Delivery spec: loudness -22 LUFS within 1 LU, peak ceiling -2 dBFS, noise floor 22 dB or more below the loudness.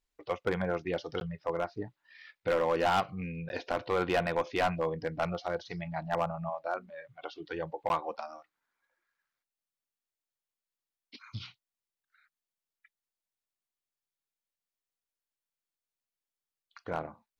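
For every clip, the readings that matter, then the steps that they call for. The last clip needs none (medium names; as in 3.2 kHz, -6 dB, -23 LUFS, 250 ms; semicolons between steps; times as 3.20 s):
clipped samples 0.5%; clipping level -21.5 dBFS; dropouts 3; longest dropout 11 ms; loudness -33.5 LUFS; peak level -21.5 dBFS; loudness target -22.0 LUFS
-> clip repair -21.5 dBFS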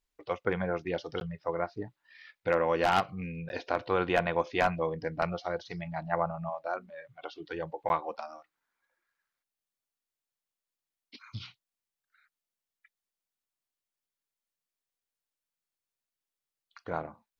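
clipped samples 0.0%; dropouts 3; longest dropout 11 ms
-> interpolate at 1.20/3.49/7.89 s, 11 ms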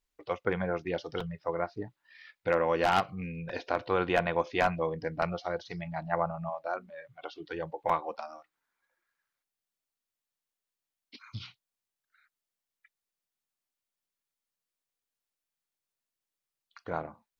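dropouts 0; loudness -32.0 LUFS; peak level -12.5 dBFS; loudness target -22.0 LUFS
-> trim +10 dB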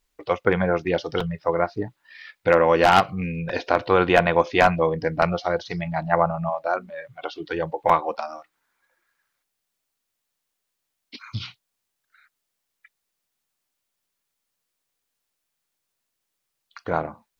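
loudness -22.5 LUFS; peak level -2.5 dBFS; noise floor -80 dBFS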